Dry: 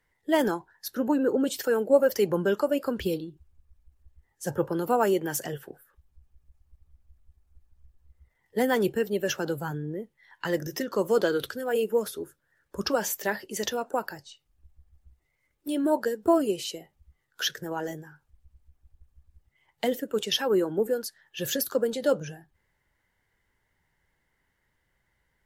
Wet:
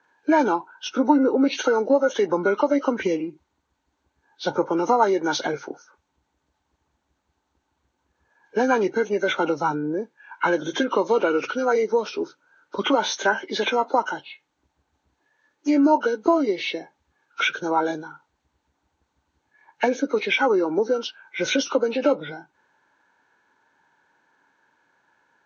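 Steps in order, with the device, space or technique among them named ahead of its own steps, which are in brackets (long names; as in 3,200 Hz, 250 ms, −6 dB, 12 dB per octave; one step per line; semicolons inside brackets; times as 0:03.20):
hearing aid with frequency lowering (hearing-aid frequency compression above 1,200 Hz 1.5 to 1; downward compressor 3 to 1, threshold −28 dBFS, peak gain reduction 11 dB; loudspeaker in its box 280–6,700 Hz, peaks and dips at 280 Hz +7 dB, 910 Hz +9 dB, 1,500 Hz +5 dB, 5,100 Hz −9 dB)
level +9 dB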